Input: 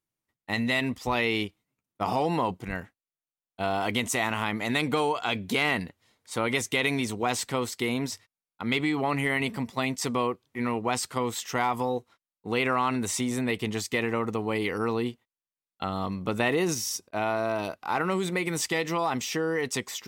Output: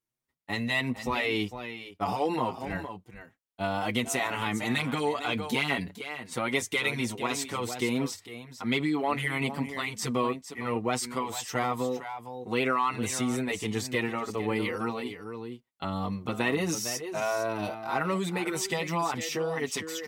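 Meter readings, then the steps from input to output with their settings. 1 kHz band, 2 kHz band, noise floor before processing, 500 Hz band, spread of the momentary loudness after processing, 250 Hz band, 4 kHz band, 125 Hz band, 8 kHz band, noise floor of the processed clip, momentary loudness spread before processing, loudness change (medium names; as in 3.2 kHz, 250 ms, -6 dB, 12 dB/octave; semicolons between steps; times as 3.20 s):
-2.0 dB, -2.0 dB, under -85 dBFS, -2.0 dB, 9 LU, -1.5 dB, -2.0 dB, -1.5 dB, -1.5 dB, -64 dBFS, 7 LU, -2.0 dB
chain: on a send: delay 456 ms -11 dB; on the sum: endless flanger 6.2 ms +1.3 Hz; trim +1 dB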